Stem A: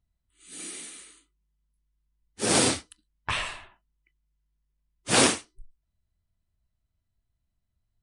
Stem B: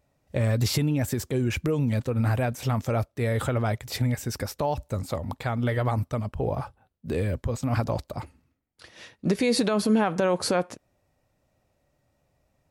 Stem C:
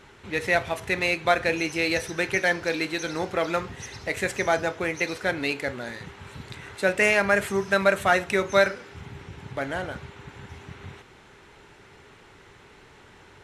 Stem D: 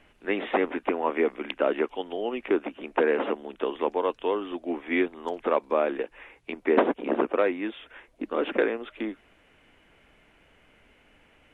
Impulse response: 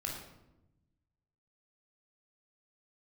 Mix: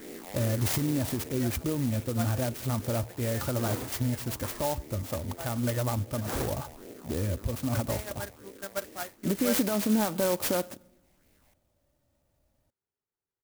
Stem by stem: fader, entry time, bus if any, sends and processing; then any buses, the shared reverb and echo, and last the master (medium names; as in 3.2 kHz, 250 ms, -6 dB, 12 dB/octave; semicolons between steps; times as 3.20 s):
-12.5 dB, 1.15 s, no send, resonant high shelf 2.4 kHz -7 dB, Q 1.5
-5.5 dB, 0.00 s, send -21.5 dB, tone controls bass +3 dB, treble +6 dB; comb 3.4 ms, depth 36%
-12.0 dB, 0.90 s, no send, treble shelf 6.2 kHz -9 dB; upward expansion 2.5:1, over -37 dBFS
0.0 dB, 0.00 s, send -24 dB, spectral blur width 797 ms; phase shifter stages 6, 2.5 Hz, lowest notch 340–1300 Hz; auto duck -14 dB, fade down 1.80 s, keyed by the second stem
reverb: on, RT60 0.95 s, pre-delay 20 ms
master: sampling jitter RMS 0.096 ms